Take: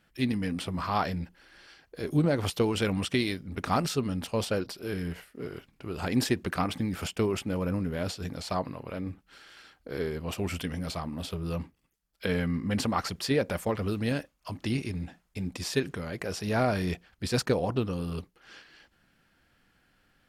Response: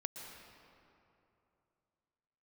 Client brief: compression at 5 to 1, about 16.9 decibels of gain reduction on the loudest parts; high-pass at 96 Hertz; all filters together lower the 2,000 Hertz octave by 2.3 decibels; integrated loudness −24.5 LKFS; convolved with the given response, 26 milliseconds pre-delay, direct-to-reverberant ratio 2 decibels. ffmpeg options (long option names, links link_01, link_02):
-filter_complex "[0:a]highpass=96,equalizer=frequency=2000:width_type=o:gain=-3,acompressor=threshold=-41dB:ratio=5,asplit=2[link_01][link_02];[1:a]atrim=start_sample=2205,adelay=26[link_03];[link_02][link_03]afir=irnorm=-1:irlink=0,volume=-1dB[link_04];[link_01][link_04]amix=inputs=2:normalize=0,volume=18.5dB"